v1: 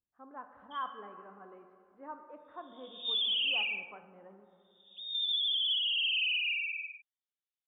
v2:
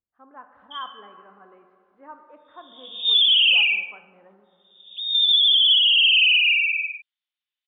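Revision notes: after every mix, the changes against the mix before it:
background +8.5 dB; master: add peaking EQ 3.1 kHz +6 dB 3 oct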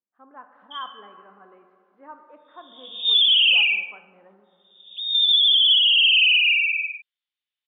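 speech: add brick-wall FIR high-pass 150 Hz

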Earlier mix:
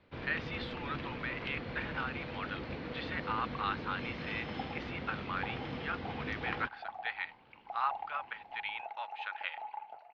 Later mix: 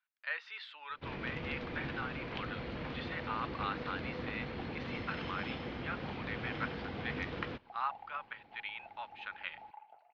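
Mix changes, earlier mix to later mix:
speech -3.0 dB; first sound: entry +0.90 s; second sound -9.5 dB

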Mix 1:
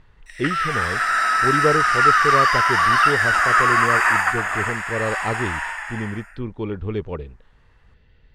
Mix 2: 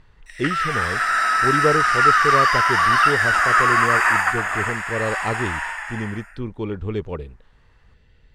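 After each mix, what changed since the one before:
speech: remove low-pass 4.6 kHz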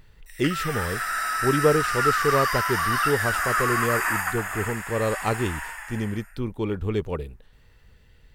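background -8.5 dB; master: remove distance through air 83 m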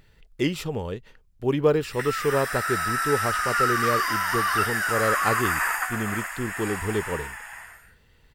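background: entry +1.55 s; master: add bass shelf 95 Hz -7 dB

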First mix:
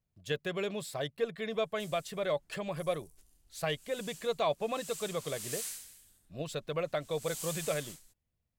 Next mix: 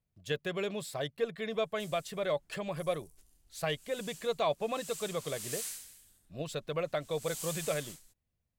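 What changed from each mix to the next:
no change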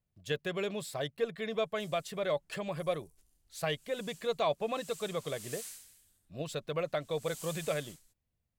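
background -5.5 dB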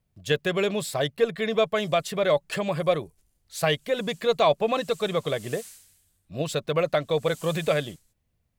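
speech +10.0 dB

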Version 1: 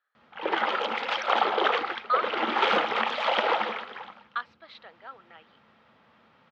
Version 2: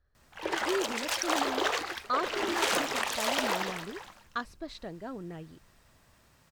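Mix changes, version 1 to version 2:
speech: remove high-pass 1.3 kHz 12 dB/octave; master: remove cabinet simulation 150–3800 Hz, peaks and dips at 220 Hz +10 dB, 490 Hz +8 dB, 830 Hz +8 dB, 1.3 kHz +9 dB, 2.2 kHz +4 dB, 3.2 kHz +5 dB

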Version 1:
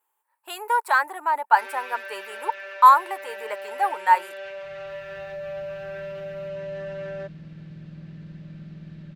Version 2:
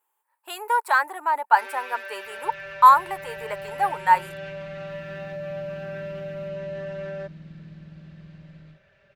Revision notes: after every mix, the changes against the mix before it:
second sound: entry -2.20 s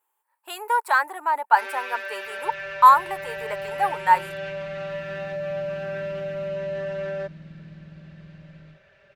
first sound +4.0 dB

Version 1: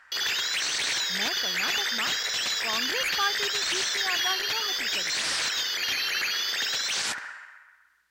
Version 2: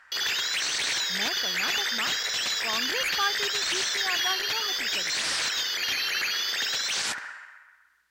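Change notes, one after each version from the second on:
no change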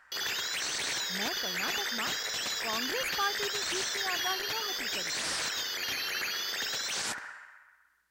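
master: add peaking EQ 3.1 kHz -7 dB 2.6 oct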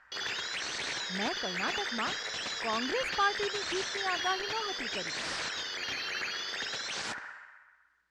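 speech +4.0 dB; master: add distance through air 97 m

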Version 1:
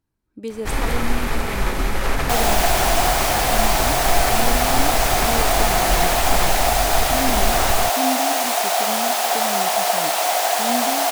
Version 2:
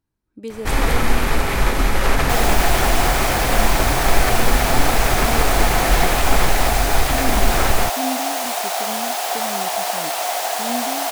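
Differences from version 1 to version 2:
first sound +4.0 dB; reverb: off

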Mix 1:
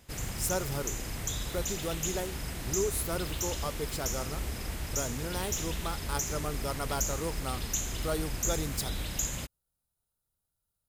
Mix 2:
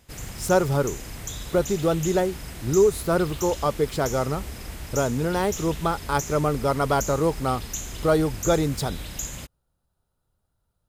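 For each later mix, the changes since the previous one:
speech: remove pre-emphasis filter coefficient 0.8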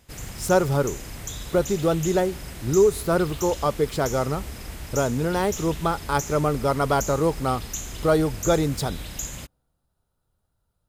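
reverb: on, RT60 1.5 s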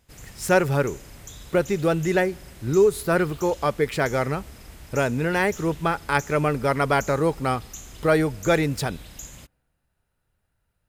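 speech: add high-order bell 2.1 kHz +11 dB 1 oct; background -7.5 dB

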